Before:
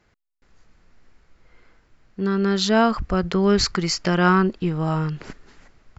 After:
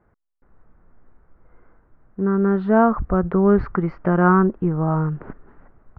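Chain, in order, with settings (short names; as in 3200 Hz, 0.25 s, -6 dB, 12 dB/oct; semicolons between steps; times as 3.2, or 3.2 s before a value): LPF 1400 Hz 24 dB/oct; gain +2.5 dB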